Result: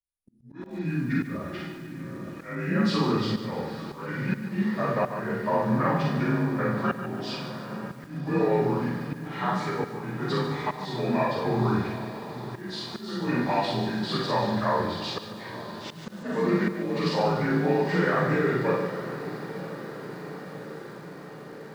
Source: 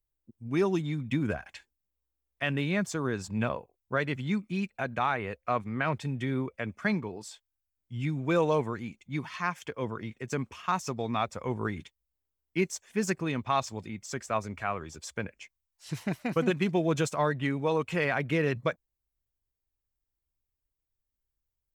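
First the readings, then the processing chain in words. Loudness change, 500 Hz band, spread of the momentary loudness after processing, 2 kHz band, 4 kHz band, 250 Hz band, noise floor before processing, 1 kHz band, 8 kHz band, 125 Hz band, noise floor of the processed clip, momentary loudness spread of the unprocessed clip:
+3.0 dB, +4.0 dB, 14 LU, +1.5 dB, +6.5 dB, +5.0 dB, -85 dBFS, +4.0 dB, -6.5 dB, +4.0 dB, -43 dBFS, 11 LU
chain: inharmonic rescaling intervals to 86%; gate with hold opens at -56 dBFS; in parallel at +2 dB: limiter -25 dBFS, peak gain reduction 9.5 dB; on the sum: compressor 6:1, threshold -24 dBFS, peak gain reduction 6 dB; on a send: diffused feedback echo 0.882 s, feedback 71%, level -13.5 dB; on the sum: Schroeder reverb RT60 0.51 s, combs from 33 ms, DRR -2 dB; auto swell 0.407 s; lo-fi delay 0.146 s, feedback 55%, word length 8-bit, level -10 dB

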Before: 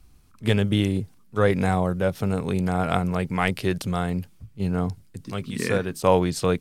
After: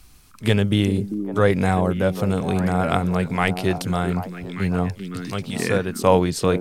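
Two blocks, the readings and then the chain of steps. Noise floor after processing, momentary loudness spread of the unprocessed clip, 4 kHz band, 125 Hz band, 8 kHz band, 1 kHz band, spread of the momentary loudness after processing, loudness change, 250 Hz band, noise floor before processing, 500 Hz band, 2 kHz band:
-47 dBFS, 10 LU, +3.0 dB, +2.5 dB, +3.0 dB, +3.0 dB, 9 LU, +3.0 dB, +3.0 dB, -53 dBFS, +3.0 dB, +3.0 dB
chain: delay with a stepping band-pass 0.394 s, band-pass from 270 Hz, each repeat 1.4 oct, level -5 dB; mismatched tape noise reduction encoder only; gain +2.5 dB

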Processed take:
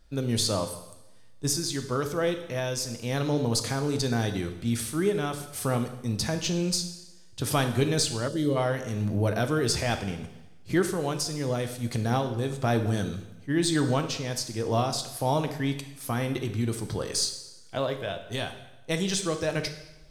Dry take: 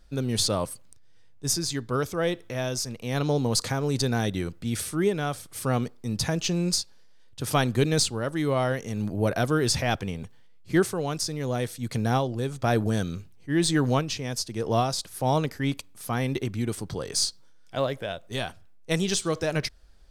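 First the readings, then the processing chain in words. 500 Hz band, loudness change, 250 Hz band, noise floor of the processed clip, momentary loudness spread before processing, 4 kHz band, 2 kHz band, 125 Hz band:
-1.0 dB, -1.0 dB, -1.0 dB, -49 dBFS, 8 LU, -1.0 dB, -1.5 dB, -1.0 dB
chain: recorder AGC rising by 7.5 dB/s; two-slope reverb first 0.92 s, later 2.5 s, from -26 dB, DRR 6.5 dB; spectral gain 8.28–8.56, 640–2800 Hz -11 dB; gain -2.5 dB

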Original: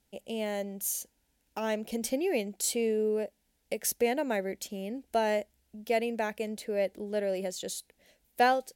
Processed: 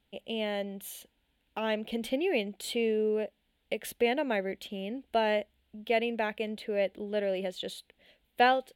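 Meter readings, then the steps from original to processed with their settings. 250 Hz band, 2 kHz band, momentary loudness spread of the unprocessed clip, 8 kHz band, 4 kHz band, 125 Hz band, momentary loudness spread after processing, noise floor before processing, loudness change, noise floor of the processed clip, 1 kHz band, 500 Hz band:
0.0 dB, +2.5 dB, 11 LU, -12.5 dB, +3.5 dB, n/a, 13 LU, -75 dBFS, 0.0 dB, -76 dBFS, +0.5 dB, 0.0 dB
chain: resonant high shelf 4400 Hz -9.5 dB, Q 3

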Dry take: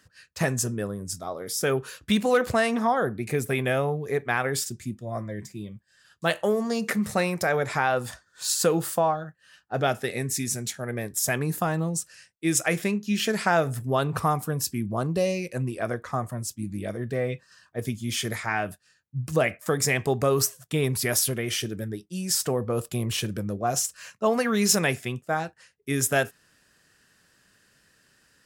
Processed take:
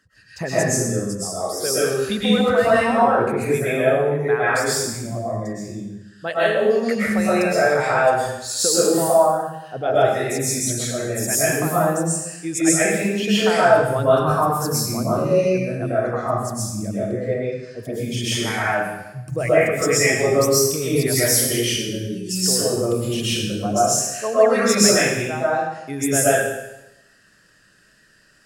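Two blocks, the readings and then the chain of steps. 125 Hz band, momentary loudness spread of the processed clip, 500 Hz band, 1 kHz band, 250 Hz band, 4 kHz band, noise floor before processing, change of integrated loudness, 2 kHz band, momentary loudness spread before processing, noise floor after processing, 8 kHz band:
+3.5 dB, 10 LU, +9.0 dB, +7.0 dB, +6.0 dB, +7.5 dB, -65 dBFS, +7.0 dB, +6.0 dB, 10 LU, -55 dBFS, +7.5 dB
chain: formant sharpening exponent 1.5; digital reverb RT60 0.93 s, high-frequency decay 1×, pre-delay 85 ms, DRR -10 dB; gain -3 dB

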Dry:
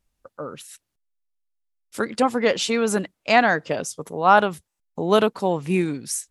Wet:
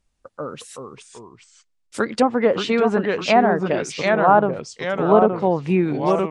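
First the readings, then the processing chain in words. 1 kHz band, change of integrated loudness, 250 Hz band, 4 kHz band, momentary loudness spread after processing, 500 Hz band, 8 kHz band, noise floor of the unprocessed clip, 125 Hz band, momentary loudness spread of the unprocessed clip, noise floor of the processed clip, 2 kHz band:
+2.0 dB, +2.5 dB, +4.0 dB, -1.5 dB, 18 LU, +4.5 dB, -7.0 dB, -80 dBFS, +4.5 dB, 19 LU, -68 dBFS, -1.5 dB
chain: downsampling 22050 Hz; echoes that change speed 0.33 s, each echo -2 st, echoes 2, each echo -6 dB; treble ducked by the level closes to 960 Hz, closed at -14 dBFS; gain +3 dB

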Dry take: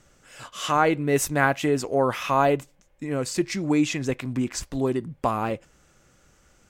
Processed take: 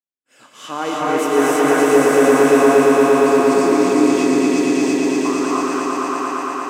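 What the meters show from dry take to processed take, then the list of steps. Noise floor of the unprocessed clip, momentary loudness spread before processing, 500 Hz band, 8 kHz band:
-60 dBFS, 10 LU, +12.0 dB, +7.0 dB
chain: high-pass sweep 260 Hz -> 1800 Hz, 4.17–5.6; gate -50 dBFS, range -43 dB; swelling echo 0.115 s, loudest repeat 5, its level -4 dB; non-linear reverb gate 0.35 s rising, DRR -5.5 dB; gain -6.5 dB

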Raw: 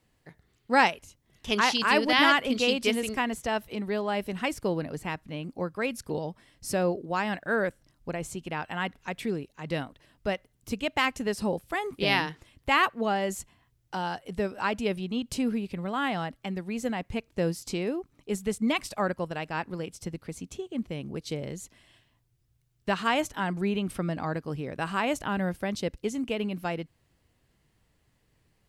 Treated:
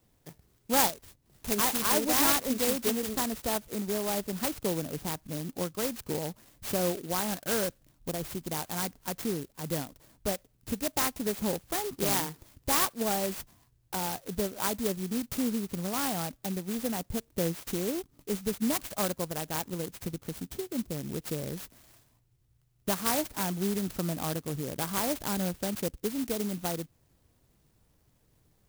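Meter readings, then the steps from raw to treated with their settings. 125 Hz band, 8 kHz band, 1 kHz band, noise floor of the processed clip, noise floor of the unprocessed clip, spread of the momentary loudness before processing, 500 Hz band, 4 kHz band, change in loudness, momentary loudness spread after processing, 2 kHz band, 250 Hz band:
-1.5 dB, +9.0 dB, -5.0 dB, -69 dBFS, -70 dBFS, 13 LU, -3.0 dB, -3.5 dB, -1.5 dB, 11 LU, -9.5 dB, -2.0 dB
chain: in parallel at +2 dB: compressor, threshold -35 dBFS, peak gain reduction 18 dB; on the sum: clock jitter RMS 0.14 ms; gain -5 dB

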